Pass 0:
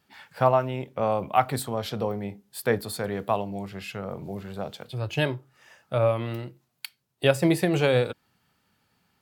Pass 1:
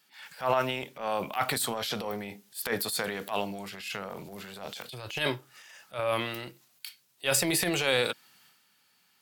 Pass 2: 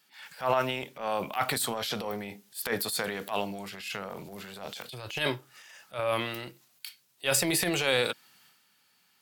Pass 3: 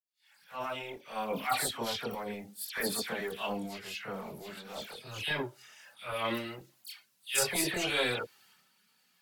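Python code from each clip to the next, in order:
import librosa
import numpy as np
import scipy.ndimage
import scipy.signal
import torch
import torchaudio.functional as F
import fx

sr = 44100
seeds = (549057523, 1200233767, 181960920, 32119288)

y1 = scipy.signal.sosfilt(scipy.signal.butter(2, 160.0, 'highpass', fs=sr, output='sos'), x)
y1 = fx.tilt_shelf(y1, sr, db=-8.0, hz=1300.0)
y1 = fx.transient(y1, sr, attack_db=-12, sustain_db=7)
y2 = y1
y3 = fx.fade_in_head(y2, sr, length_s=1.25)
y3 = fx.chorus_voices(y3, sr, voices=4, hz=0.3, base_ms=25, depth_ms=2.8, mix_pct=65)
y3 = fx.dispersion(y3, sr, late='lows', ms=110.0, hz=2200.0)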